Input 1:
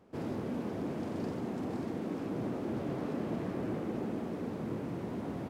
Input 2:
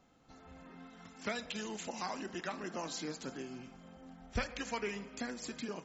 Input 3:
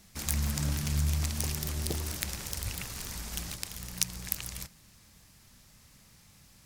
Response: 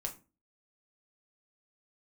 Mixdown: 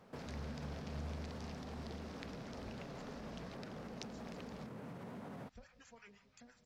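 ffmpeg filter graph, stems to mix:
-filter_complex "[0:a]highpass=120,alimiter=level_in=8.5dB:limit=-24dB:level=0:latency=1,volume=-8.5dB,volume=2.5dB[link_01];[1:a]acrossover=split=730[link_02][link_03];[link_02]aeval=exprs='val(0)*(1-1/2+1/2*cos(2*PI*5.9*n/s))':channel_layout=same[link_04];[link_03]aeval=exprs='val(0)*(1-1/2-1/2*cos(2*PI*5.9*n/s))':channel_layout=same[link_05];[link_04][link_05]amix=inputs=2:normalize=0,adelay=1200,volume=-14.5dB[link_06];[2:a]lowpass=frequency=5000:width=0.5412,lowpass=frequency=5000:width=1.3066,volume=-16dB[link_07];[link_01][link_06]amix=inputs=2:normalize=0,equalizer=frequency=330:width_type=o:width=0.48:gain=-12.5,acompressor=threshold=-46dB:ratio=6,volume=0dB[link_08];[link_07][link_08]amix=inputs=2:normalize=0,equalizer=frequency=1500:width_type=o:width=0.77:gain=2.5"

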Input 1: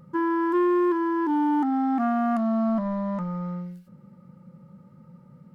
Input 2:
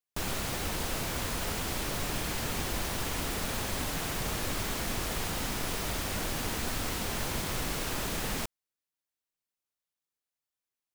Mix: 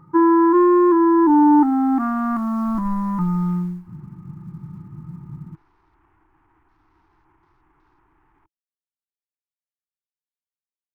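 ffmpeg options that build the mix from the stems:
ffmpeg -i stem1.wav -i stem2.wav -filter_complex "[0:a]asubboost=boost=11.5:cutoff=180,acrusher=bits=9:mode=log:mix=0:aa=0.000001,volume=1.5dB[link_01];[1:a]acrossover=split=110|580|2800[link_02][link_03][link_04][link_05];[link_02]acompressor=threshold=-35dB:ratio=4[link_06];[link_03]acompressor=threshold=-44dB:ratio=4[link_07];[link_04]acompressor=threshold=-41dB:ratio=4[link_08];[link_05]acompressor=threshold=-45dB:ratio=4[link_09];[link_06][link_07][link_08][link_09]amix=inputs=4:normalize=0,afwtdn=0.00501,alimiter=level_in=12.5dB:limit=-24dB:level=0:latency=1:release=92,volume=-12.5dB,volume=-18.5dB[link_10];[link_01][link_10]amix=inputs=2:normalize=0,firequalizer=gain_entry='entry(150,0);entry(220,-10);entry(320,12);entry(540,-17);entry(870,10);entry(1600,1);entry(3000,-9)':delay=0.05:min_phase=1" out.wav

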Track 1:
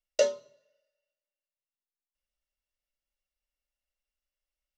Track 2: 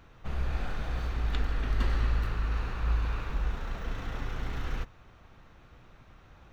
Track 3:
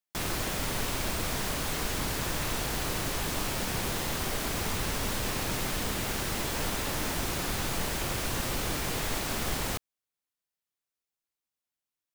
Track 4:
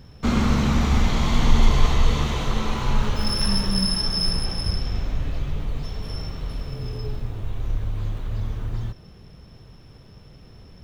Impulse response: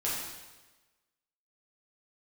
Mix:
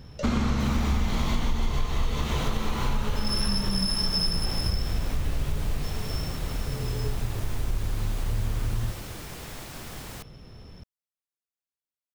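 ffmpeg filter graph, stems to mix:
-filter_complex "[0:a]volume=-14dB[link_01];[2:a]adelay=450,volume=-9dB[link_02];[3:a]volume=-1dB,asplit=2[link_03][link_04];[link_04]volume=-15.5dB[link_05];[4:a]atrim=start_sample=2205[link_06];[link_05][link_06]afir=irnorm=-1:irlink=0[link_07];[link_01][link_02][link_03][link_07]amix=inputs=4:normalize=0,acompressor=threshold=-21dB:ratio=6"

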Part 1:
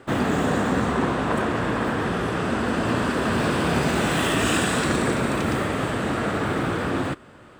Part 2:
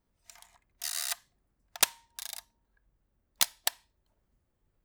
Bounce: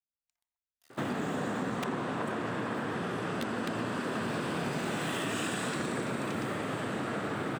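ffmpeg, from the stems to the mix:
ffmpeg -i stem1.wav -i stem2.wav -filter_complex "[0:a]highpass=frequency=110:width=0.5412,highpass=frequency=110:width=1.3066,adelay=900,volume=-4.5dB[link_01];[1:a]acrossover=split=2900[link_02][link_03];[link_03]acompressor=threshold=-41dB:ratio=4:attack=1:release=60[link_04];[link_02][link_04]amix=inputs=2:normalize=0,aeval=exprs='0.224*(cos(1*acos(clip(val(0)/0.224,-1,1)))-cos(1*PI/2))+0.0316*(cos(7*acos(clip(val(0)/0.224,-1,1)))-cos(7*PI/2))':channel_layout=same,volume=-1dB[link_05];[link_01][link_05]amix=inputs=2:normalize=0,acompressor=threshold=-32dB:ratio=3" out.wav

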